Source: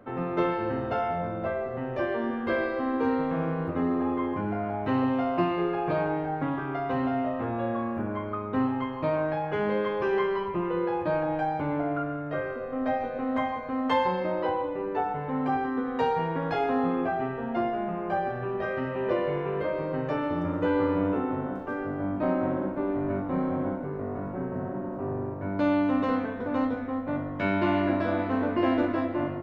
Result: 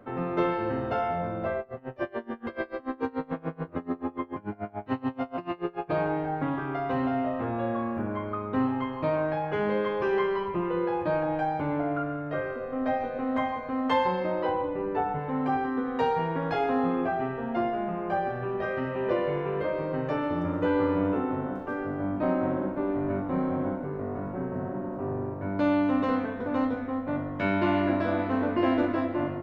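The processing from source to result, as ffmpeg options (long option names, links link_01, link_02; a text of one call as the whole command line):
ffmpeg -i in.wav -filter_complex "[0:a]asplit=3[link_01][link_02][link_03];[link_01]afade=type=out:start_time=1.58:duration=0.02[link_04];[link_02]aeval=exprs='val(0)*pow(10,-26*(0.5-0.5*cos(2*PI*6.9*n/s))/20)':channel_layout=same,afade=type=in:start_time=1.58:duration=0.02,afade=type=out:start_time=5.89:duration=0.02[link_05];[link_03]afade=type=in:start_time=5.89:duration=0.02[link_06];[link_04][link_05][link_06]amix=inputs=3:normalize=0,asettb=1/sr,asplit=3[link_07][link_08][link_09];[link_07]atrim=end=14.524[link_10];[link_08]atrim=start=14.52:end=15.19,asetpts=PTS-STARTPTS,afade=type=in:duration=0.004:curve=qsin,afade=type=out:start_time=0.666:duration=0.004:curve=qsin,bass=frequency=250:gain=5,treble=frequency=4000:gain=-6[link_11];[link_09]atrim=start=15.186[link_12];[link_10][link_11]acrossfade=duration=0.004:curve1=hsin:curve2=qsin[link_13];[link_13][link_12]acrossfade=duration=0.004:curve1=qsin:curve2=hsin" out.wav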